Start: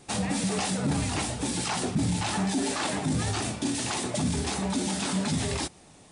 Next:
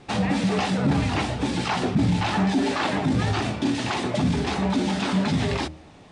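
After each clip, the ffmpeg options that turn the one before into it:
-af "lowpass=3.5k,bandreject=f=78.26:t=h:w=4,bandreject=f=156.52:t=h:w=4,bandreject=f=234.78:t=h:w=4,bandreject=f=313.04:t=h:w=4,bandreject=f=391.3:t=h:w=4,bandreject=f=469.56:t=h:w=4,bandreject=f=547.82:t=h:w=4,bandreject=f=626.08:t=h:w=4,bandreject=f=704.34:t=h:w=4,volume=6dB"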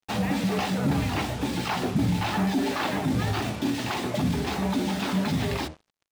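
-af "acrusher=bits=5:mix=0:aa=0.5,volume=-3dB"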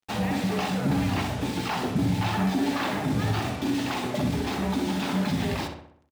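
-filter_complex "[0:a]asplit=2[a][b];[b]adelay=64,lowpass=f=3.1k:p=1,volume=-5.5dB,asplit=2[c][d];[d]adelay=64,lowpass=f=3.1k:p=1,volume=0.52,asplit=2[e][f];[f]adelay=64,lowpass=f=3.1k:p=1,volume=0.52,asplit=2[g][h];[h]adelay=64,lowpass=f=3.1k:p=1,volume=0.52,asplit=2[i][j];[j]adelay=64,lowpass=f=3.1k:p=1,volume=0.52,asplit=2[k][l];[l]adelay=64,lowpass=f=3.1k:p=1,volume=0.52,asplit=2[m][n];[n]adelay=64,lowpass=f=3.1k:p=1,volume=0.52[o];[a][c][e][g][i][k][m][o]amix=inputs=8:normalize=0,volume=-1.5dB"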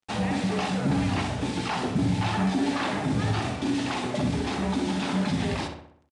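-af "aresample=22050,aresample=44100"

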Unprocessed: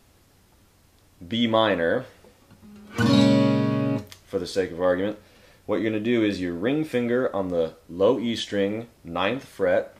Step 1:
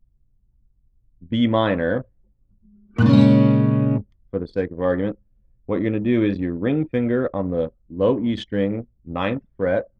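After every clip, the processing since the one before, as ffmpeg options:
-af "anlmdn=39.8,bass=f=250:g=9,treble=f=4k:g=-11"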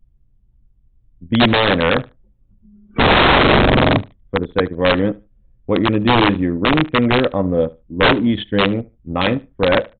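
-af "aresample=8000,aeval=exprs='(mod(4.22*val(0)+1,2)-1)/4.22':c=same,aresample=44100,aecho=1:1:74|148:0.075|0.012,volume=6dB"

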